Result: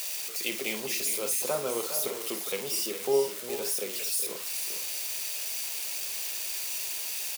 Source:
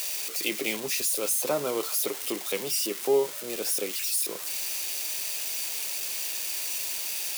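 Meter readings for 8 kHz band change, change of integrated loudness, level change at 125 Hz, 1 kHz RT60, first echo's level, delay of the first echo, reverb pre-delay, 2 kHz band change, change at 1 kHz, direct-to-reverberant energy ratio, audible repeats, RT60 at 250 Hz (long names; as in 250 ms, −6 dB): −2.0 dB, −2.0 dB, −2.0 dB, no reverb audible, −10.0 dB, 51 ms, no reverb audible, −2.0 dB, −2.0 dB, no reverb audible, 3, no reverb audible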